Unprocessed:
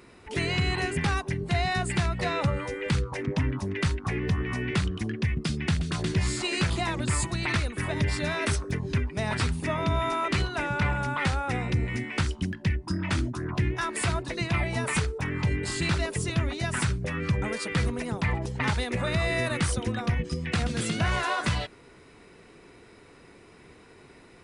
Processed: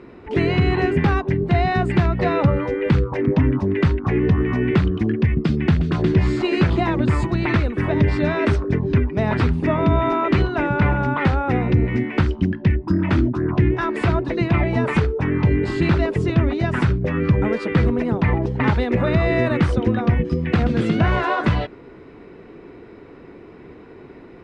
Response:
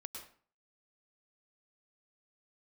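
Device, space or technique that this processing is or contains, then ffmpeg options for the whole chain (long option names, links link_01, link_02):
phone in a pocket: -af "lowpass=3800,equalizer=frequency=320:width_type=o:width=1.3:gain=6,highshelf=frequency=2300:gain=-10,volume=8dB"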